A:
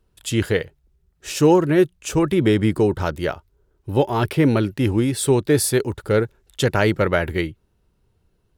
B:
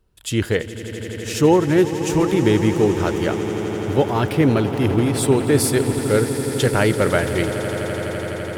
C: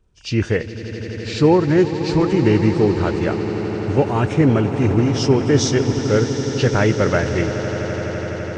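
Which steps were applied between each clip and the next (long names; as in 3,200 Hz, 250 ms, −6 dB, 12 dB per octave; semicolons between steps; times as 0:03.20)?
echo that builds up and dies away 84 ms, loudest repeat 8, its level −15.5 dB
hearing-aid frequency compression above 2,000 Hz 1.5 to 1; bass and treble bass +3 dB, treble 0 dB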